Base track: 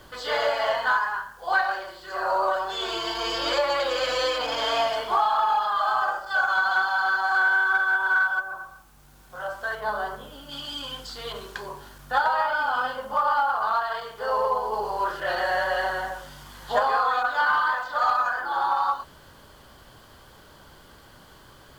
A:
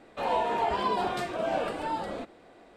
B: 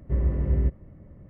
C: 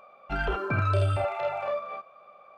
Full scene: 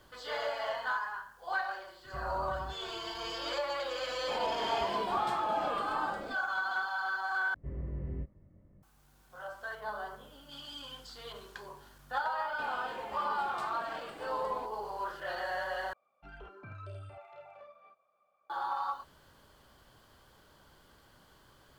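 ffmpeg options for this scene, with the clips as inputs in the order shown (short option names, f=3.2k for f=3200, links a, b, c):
-filter_complex "[2:a]asplit=2[a][b];[1:a]asplit=2[c][d];[0:a]volume=-11dB[e];[a]acompressor=threshold=-27dB:ratio=6:attack=3.2:release=140:knee=1:detection=peak[f];[b]flanger=delay=20:depth=2.9:speed=2.5[g];[d]acrossover=split=500|1000[h][i][j];[h]acompressor=threshold=-41dB:ratio=4[k];[i]acompressor=threshold=-44dB:ratio=4[l];[j]acompressor=threshold=-35dB:ratio=4[m];[k][l][m]amix=inputs=3:normalize=0[n];[3:a]flanger=delay=0:depth=1.4:regen=-65:speed=1.9:shape=triangular[o];[e]asplit=3[p][q][r];[p]atrim=end=7.544[s];[g]atrim=end=1.29,asetpts=PTS-STARTPTS,volume=-10dB[t];[q]atrim=start=8.826:end=15.934[u];[o]atrim=end=2.57,asetpts=PTS-STARTPTS,volume=-17.5dB[v];[r]atrim=start=18.496[w];[f]atrim=end=1.29,asetpts=PTS-STARTPTS,volume=-13.5dB,afade=t=in:d=0.004:c=hsin,afade=t=out:st=1.286:d=0.004:c=hsin,adelay=2040[x];[c]atrim=end=2.76,asetpts=PTS-STARTPTS,volume=-7dB,afade=t=in:d=0.004:c=hsin,afade=t=out:st=2.756:d=0.004:c=hsin,adelay=4100[y];[n]atrim=end=2.76,asetpts=PTS-STARTPTS,volume=-9dB,afade=t=in:d=0.004:c=hsin,afade=t=out:st=2.756:d=0.004:c=hsin,adelay=12410[z];[s][t]acrossfade=d=0.004:c1=hsin:c2=hsin[aa];[aa][u]acrossfade=d=0.004:c1=hsin:c2=hsin[ab];[ab][v]acrossfade=d=0.004:c1=hsin:c2=hsin[ac];[ac][w]acrossfade=d=0.004:c1=hsin:c2=hsin[ad];[ad][x][y][z]amix=inputs=4:normalize=0"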